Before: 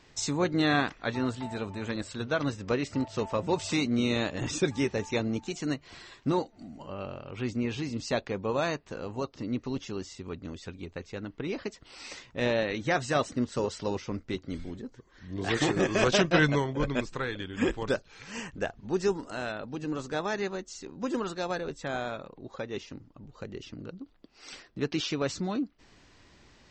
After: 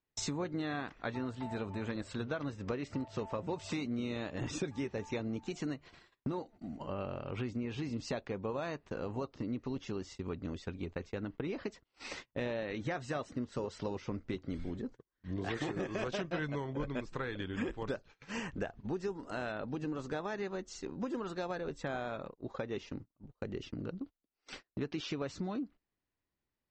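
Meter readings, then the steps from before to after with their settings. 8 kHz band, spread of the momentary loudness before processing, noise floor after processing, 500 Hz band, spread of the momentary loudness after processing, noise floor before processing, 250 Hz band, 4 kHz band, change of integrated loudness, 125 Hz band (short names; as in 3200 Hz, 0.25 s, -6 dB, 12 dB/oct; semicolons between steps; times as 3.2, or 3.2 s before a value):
-10.0 dB, 16 LU, under -85 dBFS, -8.0 dB, 6 LU, -59 dBFS, -7.0 dB, -11.0 dB, -8.5 dB, -6.5 dB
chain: gate -45 dBFS, range -34 dB; high shelf 4000 Hz -10 dB; compressor 6:1, threshold -37 dBFS, peak gain reduction 17 dB; gain +2.5 dB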